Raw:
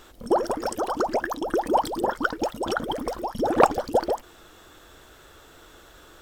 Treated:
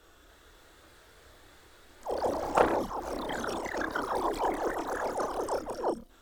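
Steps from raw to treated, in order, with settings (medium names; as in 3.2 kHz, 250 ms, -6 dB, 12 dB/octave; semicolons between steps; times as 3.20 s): reverse the whole clip; ever faster or slower copies 287 ms, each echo +2 st, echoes 3; chorus voices 4, 0.44 Hz, delay 29 ms, depth 2.2 ms; trim -6 dB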